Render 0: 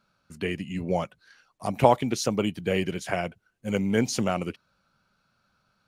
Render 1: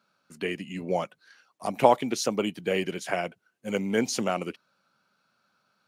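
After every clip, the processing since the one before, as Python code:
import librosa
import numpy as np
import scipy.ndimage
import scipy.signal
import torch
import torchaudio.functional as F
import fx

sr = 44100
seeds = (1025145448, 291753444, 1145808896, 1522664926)

y = scipy.signal.sosfilt(scipy.signal.butter(2, 220.0, 'highpass', fs=sr, output='sos'), x)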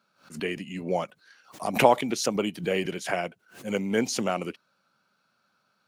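y = fx.pre_swell(x, sr, db_per_s=150.0)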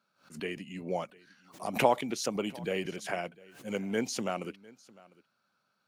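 y = x + 10.0 ** (-23.0 / 20.0) * np.pad(x, (int(702 * sr / 1000.0), 0))[:len(x)]
y = y * librosa.db_to_amplitude(-6.0)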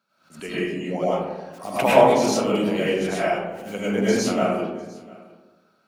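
y = fx.rev_freeverb(x, sr, rt60_s=1.2, hf_ratio=0.3, predelay_ms=65, drr_db=-9.5)
y = y * librosa.db_to_amplitude(1.0)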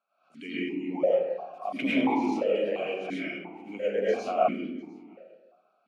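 y = fx.vowel_held(x, sr, hz=2.9)
y = y * librosa.db_to_amplitude(5.0)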